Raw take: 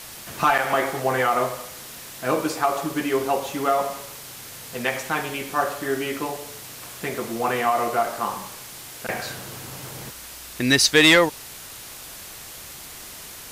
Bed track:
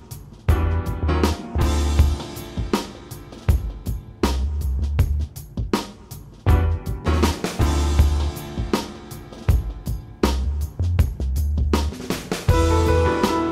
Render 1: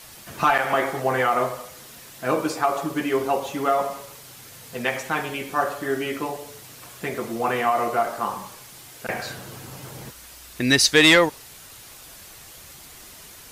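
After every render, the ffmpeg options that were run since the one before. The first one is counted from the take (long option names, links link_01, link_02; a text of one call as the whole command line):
ffmpeg -i in.wav -af "afftdn=noise_reduction=6:noise_floor=-40" out.wav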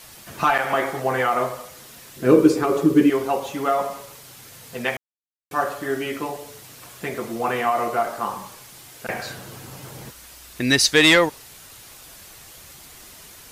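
ffmpeg -i in.wav -filter_complex "[0:a]asettb=1/sr,asplit=3[link_01][link_02][link_03];[link_01]atrim=end=2.164[link_04];[link_02]atrim=start=2.16:end=3.1,asetpts=PTS-STARTPTS,afade=type=in:duration=0.004:curve=qsin,afade=type=out:start_time=0.936:duration=0.004:curve=qsin,lowshelf=frequency=540:width_type=q:width=3:gain=8.5[link_05];[link_03]atrim=start=3.096[link_06];[link_04][link_05]acrossfade=duration=0.004:curve1=hsin:curve2=qsin[link_07];[link_07][link_06]acrossfade=duration=0.004:curve1=qsin:curve2=hsin,asplit=3[link_08][link_09][link_10];[link_08]atrim=end=4.97,asetpts=PTS-STARTPTS,afade=type=out:start_time=4.966:duration=0.004:curve=hsin[link_11];[link_09]atrim=start=4.97:end=5.51,asetpts=PTS-STARTPTS,volume=0[link_12];[link_10]atrim=start=5.51,asetpts=PTS-STARTPTS,afade=type=in:duration=0.004:curve=hsin[link_13];[link_11][link_12][link_13]concat=n=3:v=0:a=1" out.wav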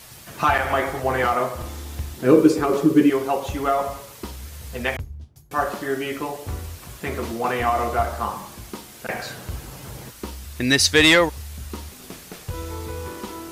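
ffmpeg -i in.wav -i bed.wav -filter_complex "[1:a]volume=-14.5dB[link_01];[0:a][link_01]amix=inputs=2:normalize=0" out.wav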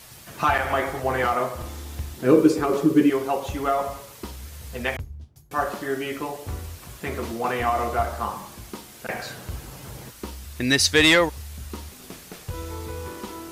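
ffmpeg -i in.wav -af "volume=-2dB" out.wav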